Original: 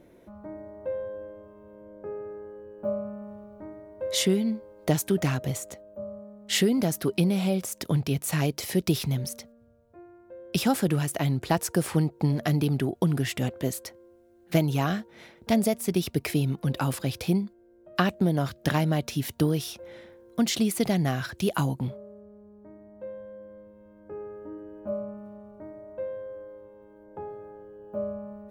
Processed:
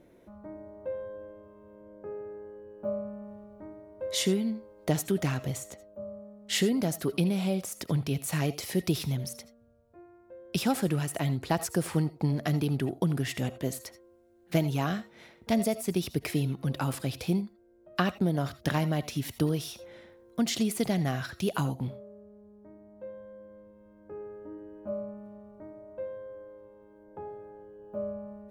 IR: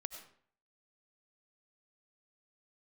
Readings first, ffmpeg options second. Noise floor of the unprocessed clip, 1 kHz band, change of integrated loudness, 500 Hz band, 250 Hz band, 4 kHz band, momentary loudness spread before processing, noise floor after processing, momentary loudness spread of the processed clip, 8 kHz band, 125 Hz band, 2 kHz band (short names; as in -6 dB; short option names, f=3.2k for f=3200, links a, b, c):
-57 dBFS, -3.0 dB, -3.5 dB, -3.5 dB, -3.5 dB, -3.0 dB, 19 LU, -59 dBFS, 19 LU, -3.5 dB, -3.5 dB, -3.0 dB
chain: -filter_complex "[0:a]equalizer=f=15k:t=o:w=0.29:g=-4[a];[1:a]atrim=start_sample=2205,atrim=end_sample=3969[b];[a][b]afir=irnorm=-1:irlink=0"